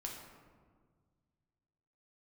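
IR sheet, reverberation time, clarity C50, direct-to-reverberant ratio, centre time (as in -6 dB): 1.7 s, 3.0 dB, -1.0 dB, 57 ms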